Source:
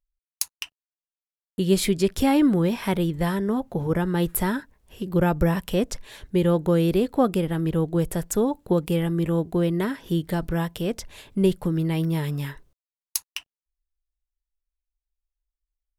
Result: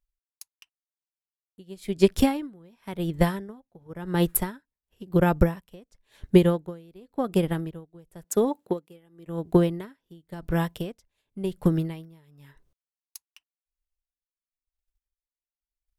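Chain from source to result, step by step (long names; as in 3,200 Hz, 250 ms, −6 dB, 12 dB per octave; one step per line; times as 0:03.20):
0:08.24–0:09.27: high-pass filter 220 Hz 12 dB per octave
transient designer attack +8 dB, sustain −5 dB
tremolo with a sine in dB 0.94 Hz, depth 30 dB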